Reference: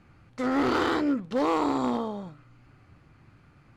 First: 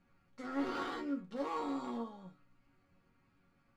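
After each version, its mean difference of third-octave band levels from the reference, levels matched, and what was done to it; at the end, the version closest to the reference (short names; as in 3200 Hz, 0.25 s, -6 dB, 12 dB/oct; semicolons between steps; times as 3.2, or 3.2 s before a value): 2.0 dB: resonator bank F#3 major, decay 0.21 s; gain +1 dB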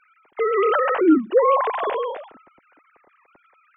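11.0 dB: sine-wave speech; gain +7 dB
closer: first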